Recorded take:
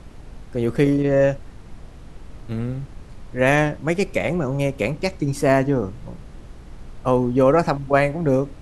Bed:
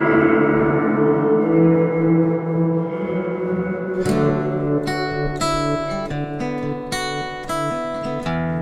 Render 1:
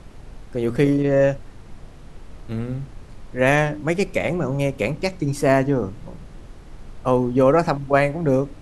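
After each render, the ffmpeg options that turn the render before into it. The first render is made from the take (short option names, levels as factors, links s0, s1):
-af "bandreject=f=60:t=h:w=4,bandreject=f=120:t=h:w=4,bandreject=f=180:t=h:w=4,bandreject=f=240:t=h:w=4,bandreject=f=300:t=h:w=4"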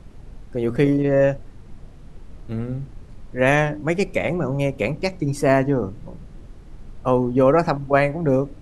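-af "afftdn=nr=6:nf=-42"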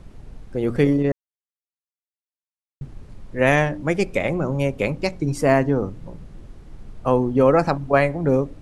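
-filter_complex "[0:a]asplit=3[s0][s1][s2];[s0]atrim=end=1.12,asetpts=PTS-STARTPTS,afade=t=out:st=1.116:d=0.004:c=hsin[s3];[s1]atrim=start=1.12:end=2.81,asetpts=PTS-STARTPTS,volume=0[s4];[s2]atrim=start=2.81,asetpts=PTS-STARTPTS,afade=t=in:d=0.004:c=hsin[s5];[s3][s4][s5]concat=n=3:v=0:a=1"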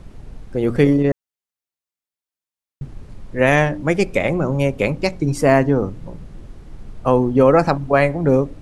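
-af "volume=1.5,alimiter=limit=0.794:level=0:latency=1"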